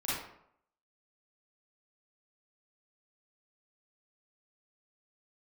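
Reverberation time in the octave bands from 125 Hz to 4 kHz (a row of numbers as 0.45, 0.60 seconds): 0.70, 0.65, 0.70, 0.70, 0.55, 0.45 seconds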